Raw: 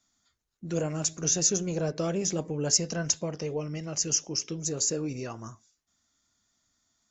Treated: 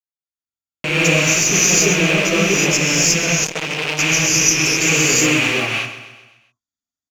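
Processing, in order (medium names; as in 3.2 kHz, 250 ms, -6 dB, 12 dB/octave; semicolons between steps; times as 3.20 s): rattle on loud lows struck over -39 dBFS, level -17 dBFS; gate -40 dBFS, range -34 dB; level rider gain up to 10.5 dB; Chebyshev shaper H 8 -28 dB, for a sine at -2 dBFS; feedback delay 130 ms, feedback 51%, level -12 dB; gated-style reverb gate 390 ms rising, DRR -7.5 dB; buffer glitch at 0.47 s, samples 1024, times 15; 3.44–3.99 s: transformer saturation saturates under 2.6 kHz; trim -5 dB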